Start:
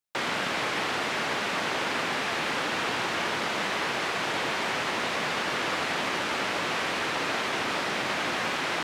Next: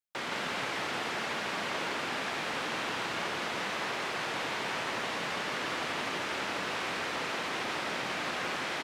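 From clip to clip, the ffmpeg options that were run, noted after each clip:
-af "aecho=1:1:168:0.668,volume=0.447"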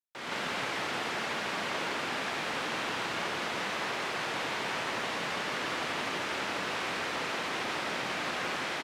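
-af "dynaudnorm=f=160:g=3:m=2.82,volume=0.376"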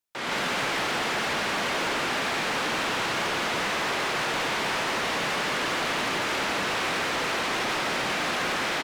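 -af "volume=42.2,asoftclip=hard,volume=0.0237,volume=2.66"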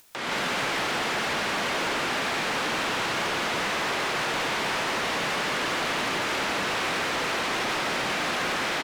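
-af "acompressor=mode=upward:threshold=0.02:ratio=2.5"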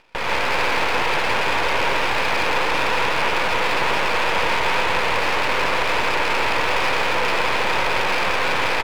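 -af "highpass=f=320:w=0.5412,highpass=f=320:w=1.3066,equalizer=f=500:t=q:w=4:g=8,equalizer=f=940:t=q:w=4:g=9,equalizer=f=2500:t=q:w=4:g=10,lowpass=f=2600:w=0.5412,lowpass=f=2600:w=1.3066,aeval=exprs='max(val(0),0)':c=same,volume=2.51"

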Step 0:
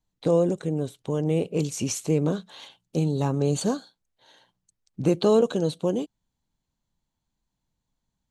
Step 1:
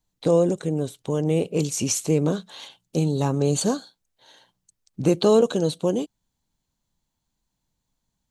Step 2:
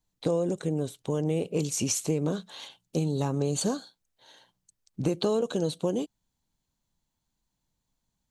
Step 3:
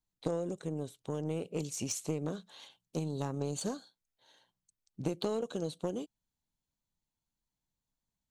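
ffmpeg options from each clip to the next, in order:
-af "bass=f=250:g=-1,treble=f=4000:g=4,volume=1.33"
-af "acompressor=threshold=0.1:ratio=6,volume=0.75"
-af "aeval=exprs='0.224*(cos(1*acos(clip(val(0)/0.224,-1,1)))-cos(1*PI/2))+0.0355*(cos(3*acos(clip(val(0)/0.224,-1,1)))-cos(3*PI/2))':c=same,volume=0.631"

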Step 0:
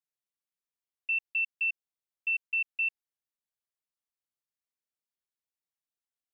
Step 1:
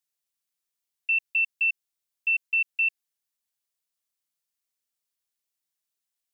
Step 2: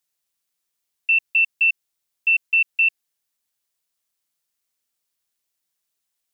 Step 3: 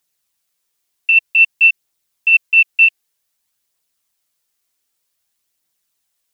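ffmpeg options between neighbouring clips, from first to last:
-af "highshelf=f=2500:g=10"
-af "tremolo=f=170:d=0.261,volume=2.37"
-af "aphaser=in_gain=1:out_gain=1:delay=3:decay=0.27:speed=0.53:type=triangular,volume=2.11"

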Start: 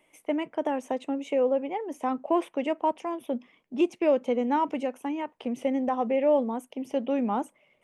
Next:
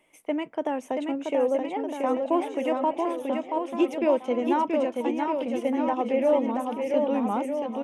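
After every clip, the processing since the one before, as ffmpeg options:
-af "aecho=1:1:680|1258|1749|2167|2522:0.631|0.398|0.251|0.158|0.1"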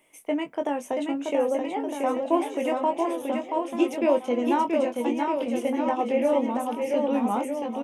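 -filter_complex "[0:a]highshelf=f=6600:g=9.5,asplit=2[s0][s1];[s1]adelay=21,volume=0.447[s2];[s0][s2]amix=inputs=2:normalize=0"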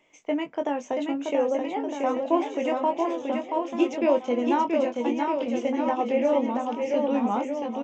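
-af "aresample=16000,aresample=44100"

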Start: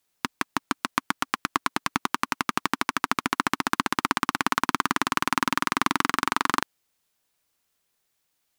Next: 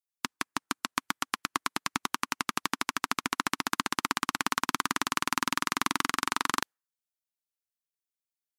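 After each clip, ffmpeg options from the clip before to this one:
-af "afftdn=nr=21:nf=-47,highshelf=f=3400:g=9.5,volume=0.473"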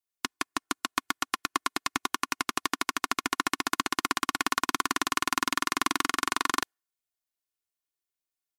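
-af "aecho=1:1:2.8:0.61"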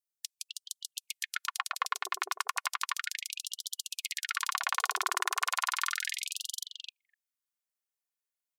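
-filter_complex "[0:a]acrossover=split=690|3700[s0][s1][s2];[s1]adelay=260[s3];[s0]adelay=510[s4];[s4][s3][s2]amix=inputs=3:normalize=0,aeval=exprs='0.335*(cos(1*acos(clip(val(0)/0.335,-1,1)))-cos(1*PI/2))+0.0237*(cos(3*acos(clip(val(0)/0.335,-1,1)))-cos(3*PI/2))+0.00473*(cos(6*acos(clip(val(0)/0.335,-1,1)))-cos(6*PI/2))':c=same,afftfilt=real='re*gte(b*sr/1024,360*pow(3000/360,0.5+0.5*sin(2*PI*0.34*pts/sr)))':imag='im*gte(b*sr/1024,360*pow(3000/360,0.5+0.5*sin(2*PI*0.34*pts/sr)))':win_size=1024:overlap=0.75"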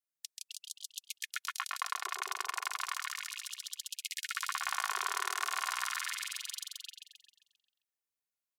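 -af "aecho=1:1:133|266|399|532|665|798|931:0.631|0.322|0.164|0.0837|0.0427|0.0218|0.0111,volume=0.562"

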